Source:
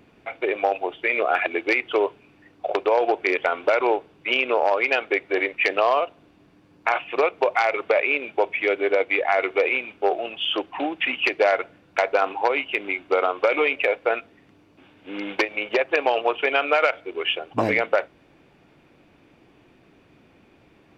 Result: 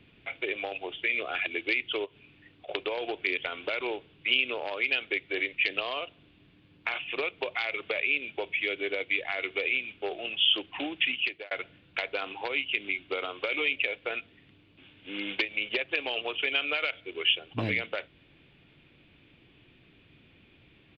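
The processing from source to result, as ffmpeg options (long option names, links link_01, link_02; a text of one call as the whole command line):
ffmpeg -i in.wav -filter_complex "[0:a]asplit=3[link_01][link_02][link_03];[link_01]afade=type=out:start_time=2.04:duration=0.02[link_04];[link_02]acompressor=threshold=-38dB:ratio=3:attack=3.2:release=140:knee=1:detection=peak,afade=type=in:start_time=2.04:duration=0.02,afade=type=out:start_time=2.67:duration=0.02[link_05];[link_03]afade=type=in:start_time=2.67:duration=0.02[link_06];[link_04][link_05][link_06]amix=inputs=3:normalize=0,asplit=2[link_07][link_08];[link_07]atrim=end=11.51,asetpts=PTS-STARTPTS,afade=type=out:start_time=11.04:duration=0.47[link_09];[link_08]atrim=start=11.51,asetpts=PTS-STARTPTS,afade=type=in:duration=0.004:curve=hsin[link_10];[link_09][link_10]concat=n=2:v=0:a=1,firequalizer=gain_entry='entry(130,0);entry(200,-5);entry(770,-12);entry(2200,0);entry(3300,6);entry(5700,-19)':delay=0.05:min_phase=1,acrossover=split=300|3000[link_11][link_12][link_13];[link_12]acompressor=threshold=-33dB:ratio=3[link_14];[link_11][link_14][link_13]amix=inputs=3:normalize=0" out.wav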